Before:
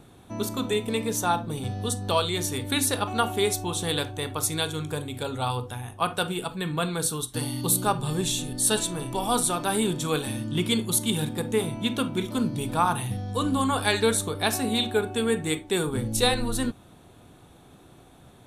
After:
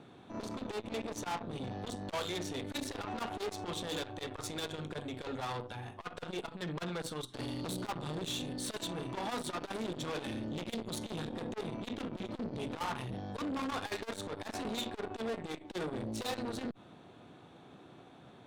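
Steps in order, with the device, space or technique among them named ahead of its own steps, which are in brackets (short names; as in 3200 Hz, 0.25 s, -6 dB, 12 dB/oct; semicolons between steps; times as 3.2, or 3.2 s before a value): valve radio (BPF 150–4100 Hz; tube stage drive 33 dB, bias 0.55; core saturation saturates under 320 Hz); gain +1 dB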